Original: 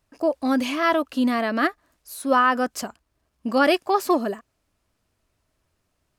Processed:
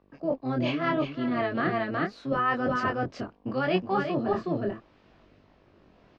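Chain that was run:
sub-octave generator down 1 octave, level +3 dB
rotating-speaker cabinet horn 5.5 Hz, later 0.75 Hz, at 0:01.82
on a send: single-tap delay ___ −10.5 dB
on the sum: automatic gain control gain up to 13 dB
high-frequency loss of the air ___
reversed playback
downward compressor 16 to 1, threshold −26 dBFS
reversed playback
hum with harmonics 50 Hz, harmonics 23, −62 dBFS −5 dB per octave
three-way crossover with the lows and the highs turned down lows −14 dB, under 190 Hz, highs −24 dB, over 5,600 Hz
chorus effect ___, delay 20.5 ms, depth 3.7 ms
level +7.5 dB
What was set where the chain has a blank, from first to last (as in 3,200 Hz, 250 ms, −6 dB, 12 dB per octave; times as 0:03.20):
368 ms, 160 metres, 0.75 Hz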